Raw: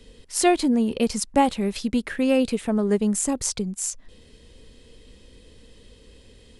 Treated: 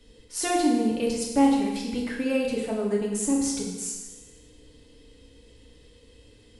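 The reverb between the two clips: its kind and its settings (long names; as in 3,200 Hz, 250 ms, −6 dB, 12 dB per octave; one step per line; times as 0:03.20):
feedback delay network reverb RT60 1.2 s, low-frequency decay 1×, high-frequency decay 0.95×, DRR −3 dB
level −8 dB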